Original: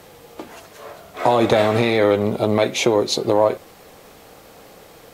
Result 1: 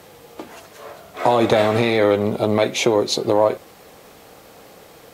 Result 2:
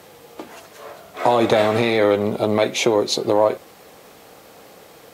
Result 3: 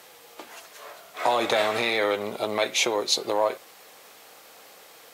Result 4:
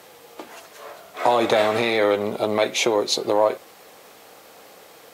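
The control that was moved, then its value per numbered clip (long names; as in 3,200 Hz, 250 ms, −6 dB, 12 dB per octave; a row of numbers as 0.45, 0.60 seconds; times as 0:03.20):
high-pass filter, corner frequency: 52, 130, 1,300, 490 Hertz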